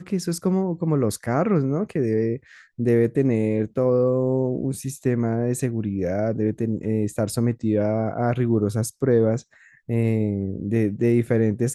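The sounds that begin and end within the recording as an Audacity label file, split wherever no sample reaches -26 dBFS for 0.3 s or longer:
2.800000	9.380000	sound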